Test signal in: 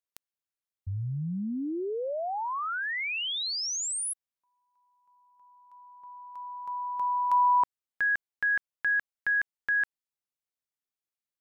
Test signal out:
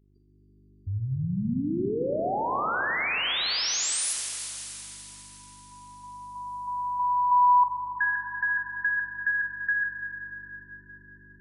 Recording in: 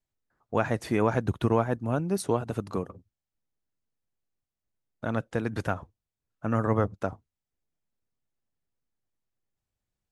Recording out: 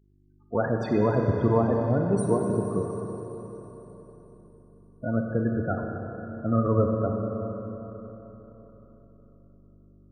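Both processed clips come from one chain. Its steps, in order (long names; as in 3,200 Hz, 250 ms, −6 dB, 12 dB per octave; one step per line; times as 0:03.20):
hum with harmonics 50 Hz, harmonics 8, −65 dBFS −4 dB per octave
spectral peaks only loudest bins 16
four-comb reverb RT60 4 s, combs from 31 ms, DRR 1.5 dB
level +2 dB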